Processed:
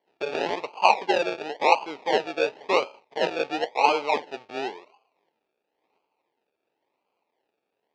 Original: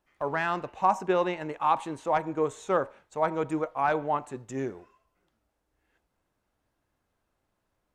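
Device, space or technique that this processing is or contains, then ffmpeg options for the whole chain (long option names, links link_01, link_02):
circuit-bent sampling toy: -af "acrusher=samples=34:mix=1:aa=0.000001:lfo=1:lforange=20.4:lforate=0.95,highpass=420,equalizer=frequency=430:width_type=q:width=4:gain=5,equalizer=frequency=880:width_type=q:width=4:gain=7,equalizer=frequency=1500:width_type=q:width=4:gain=-5,equalizer=frequency=2500:width_type=q:width=4:gain=6,lowpass=frequency=4900:width=0.5412,lowpass=frequency=4900:width=1.3066,volume=2.5dB"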